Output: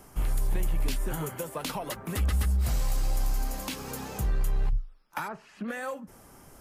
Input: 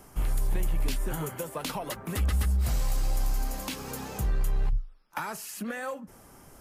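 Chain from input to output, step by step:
0:05.27–0:05.67: low-pass filter 1,400 Hz → 2,800 Hz 12 dB per octave

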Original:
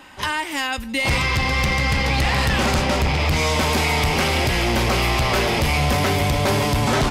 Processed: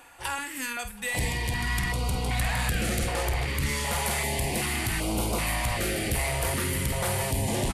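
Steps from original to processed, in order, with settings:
high shelf with overshoot 7,800 Hz +9.5 dB, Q 1.5
reversed playback
upward compression, threshold −29 dBFS
reversed playback
double-tracking delay 46 ms −10 dB
single-tap delay 665 ms −23 dB
wrong playback speed 48 kHz file played as 44.1 kHz
notch on a step sequencer 2.6 Hz 210–1,800 Hz
level −8 dB

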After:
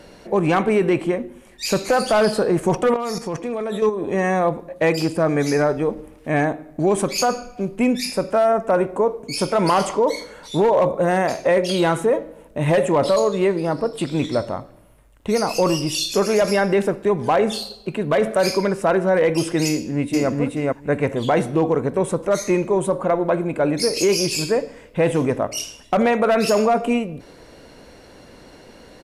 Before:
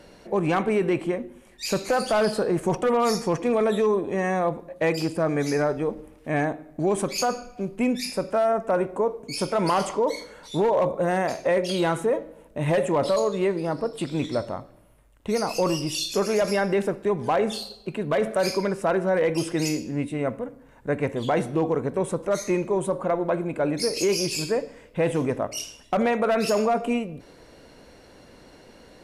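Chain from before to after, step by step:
0:02.94–0:04.02: output level in coarse steps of 10 dB
0:19.70–0:20.29: delay throw 430 ms, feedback 10%, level −0.5 dB
level +5 dB

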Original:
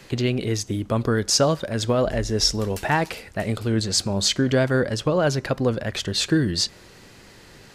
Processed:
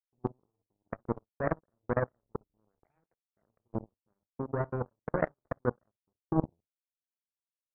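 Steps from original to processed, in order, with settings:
gate on every frequency bin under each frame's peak −20 dB strong
noise in a band 330–560 Hz −56 dBFS
in parallel at −4.5 dB: hard clipping −19 dBFS, distortion −12 dB
on the sum: Butterworth low-pass 860 Hz 36 dB per octave
hum removal 152 Hz, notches 35
output level in coarse steps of 17 dB
on a send at −8.5 dB: convolution reverb, pre-delay 3 ms
on the sum: power curve on the samples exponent 3
level −2 dB

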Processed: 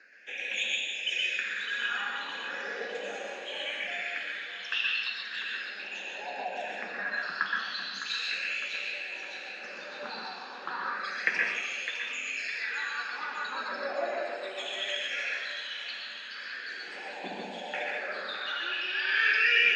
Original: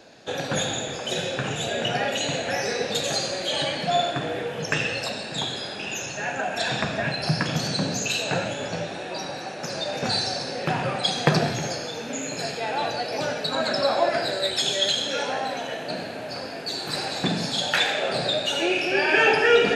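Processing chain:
elliptic high-pass filter 190 Hz, stop band 40 dB
parametric band 2,600 Hz +5 dB 1.2 octaves
notch filter 650 Hz, Q 12
reversed playback
upward compression, threshold −38 dBFS
reversed playback
auto-filter band-pass sine 0.27 Hz 810–2,800 Hz
all-pass phaser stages 6, 0.36 Hz, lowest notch 600–1,300 Hz
feedback echo with a high-pass in the loop 607 ms, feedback 59%, high-pass 760 Hz, level −9.5 dB
on a send at −1 dB: convolution reverb RT60 0.30 s, pre-delay 117 ms
on the sum: level +1 dB

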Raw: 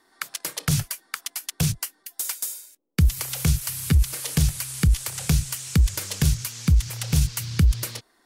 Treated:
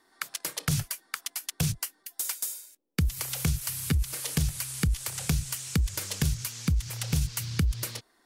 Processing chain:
downward compressor 5 to 1, threshold −19 dBFS, peak gain reduction 6.5 dB
level −3 dB

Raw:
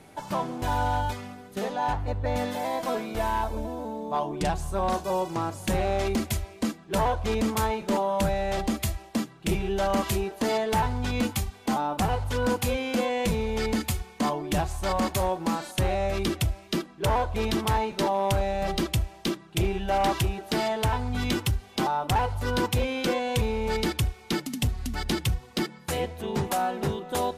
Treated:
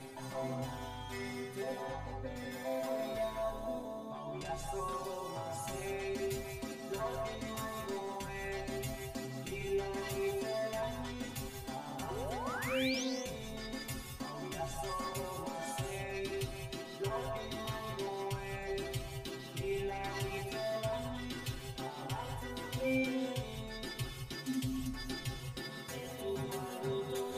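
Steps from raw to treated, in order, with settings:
reversed playback
upward compression, threshold −28 dBFS
reversed playback
brickwall limiter −30 dBFS, peak gain reduction 11 dB
stiff-string resonator 130 Hz, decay 0.26 s, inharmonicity 0.002
sound drawn into the spectrogram rise, 0:12.10–0:13.04, 350–6,600 Hz −50 dBFS
reverb whose tail is shaped and stops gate 240 ms rising, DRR 3.5 dB
level +7.5 dB

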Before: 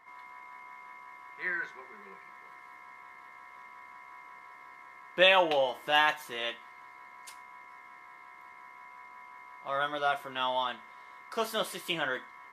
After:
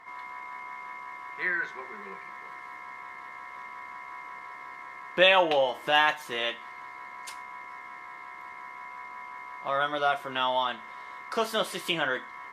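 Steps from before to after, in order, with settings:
high-shelf EQ 12,000 Hz −11 dB
in parallel at +2 dB: downward compressor, threshold −38 dBFS, peak gain reduction 19 dB
on the sum: level +1 dB

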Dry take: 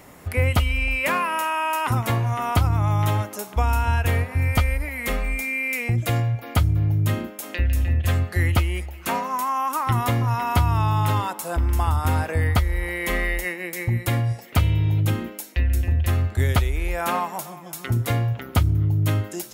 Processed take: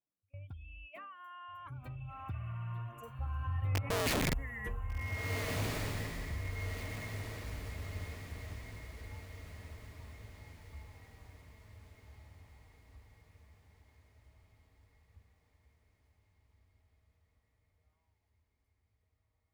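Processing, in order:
expanding power law on the bin magnitudes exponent 1.8
source passing by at 0:04.05, 36 m/s, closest 5 metres
noise gate −52 dBFS, range −26 dB
speech leveller within 5 dB 2 s
wrap-around overflow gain 23.5 dB
feedback delay with all-pass diffusion 1,554 ms, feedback 48%, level −4 dB
level −3.5 dB

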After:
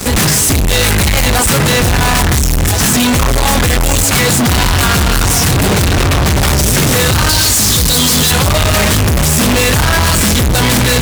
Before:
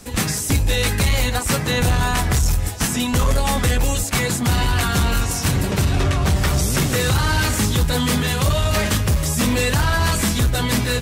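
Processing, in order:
0:07.29–0:08.31: high shelf with overshoot 3,200 Hz +12 dB, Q 1.5
fuzz pedal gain 37 dB, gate −44 dBFS
level +3.5 dB

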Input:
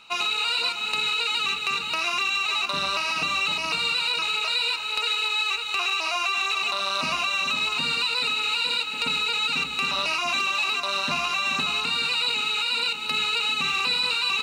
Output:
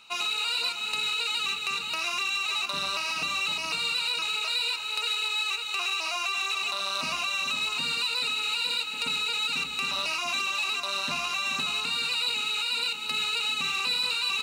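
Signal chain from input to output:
in parallel at −10.5 dB: soft clipping −25.5 dBFS, distortion −11 dB
on the sum: high-shelf EQ 4,900 Hz +8.5 dB
level −7.5 dB

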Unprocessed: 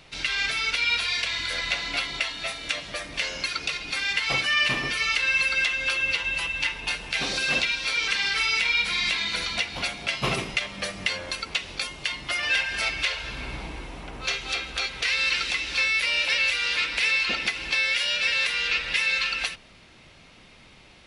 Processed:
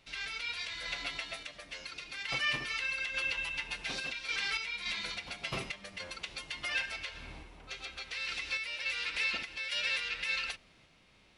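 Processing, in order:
phase-vocoder stretch with locked phases 0.54×
sample-and-hold tremolo
level −7.5 dB

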